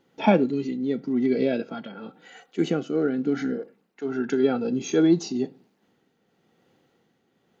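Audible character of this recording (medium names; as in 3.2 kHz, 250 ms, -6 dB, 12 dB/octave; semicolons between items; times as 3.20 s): tremolo triangle 0.93 Hz, depth 55%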